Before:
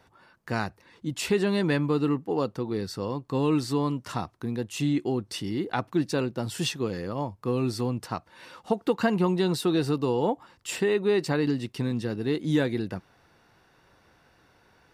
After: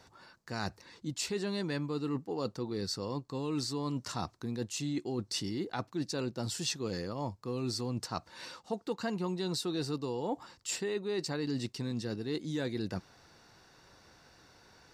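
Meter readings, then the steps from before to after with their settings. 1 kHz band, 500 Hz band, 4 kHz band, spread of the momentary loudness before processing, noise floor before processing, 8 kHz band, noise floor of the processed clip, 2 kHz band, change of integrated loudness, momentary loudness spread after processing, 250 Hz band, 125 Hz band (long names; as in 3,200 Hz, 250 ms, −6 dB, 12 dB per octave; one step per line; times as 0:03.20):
−8.5 dB, −9.5 dB, −2.5 dB, 9 LU, −62 dBFS, −0.5 dB, −64 dBFS, −9.0 dB, −8.5 dB, 5 LU, −9.0 dB, −8.5 dB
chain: flat-topped bell 5,600 Hz +8.5 dB 1.2 octaves
reversed playback
downward compressor, threshold −32 dBFS, peak gain reduction 13 dB
reversed playback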